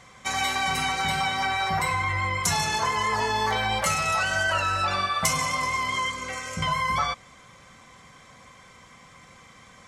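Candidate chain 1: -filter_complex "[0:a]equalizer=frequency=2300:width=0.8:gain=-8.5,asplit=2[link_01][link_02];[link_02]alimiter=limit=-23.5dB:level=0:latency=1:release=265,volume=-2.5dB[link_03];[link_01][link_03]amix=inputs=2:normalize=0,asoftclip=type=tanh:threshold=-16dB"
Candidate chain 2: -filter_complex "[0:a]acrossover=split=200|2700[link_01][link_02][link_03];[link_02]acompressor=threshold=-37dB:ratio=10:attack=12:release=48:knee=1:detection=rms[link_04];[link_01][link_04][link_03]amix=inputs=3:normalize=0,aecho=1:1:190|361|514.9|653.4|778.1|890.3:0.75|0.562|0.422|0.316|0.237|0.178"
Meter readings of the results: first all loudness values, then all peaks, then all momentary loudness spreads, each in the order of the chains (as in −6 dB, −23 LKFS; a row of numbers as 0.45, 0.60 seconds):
−26.0, −26.5 LKFS; −16.5, −10.5 dBFS; 4, 22 LU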